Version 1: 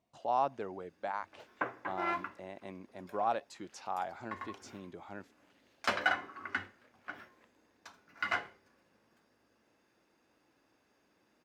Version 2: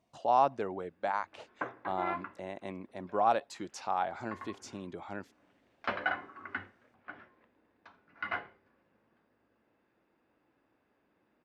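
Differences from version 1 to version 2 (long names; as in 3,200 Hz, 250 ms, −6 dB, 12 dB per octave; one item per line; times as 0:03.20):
speech +5.0 dB
background: add high-frequency loss of the air 350 metres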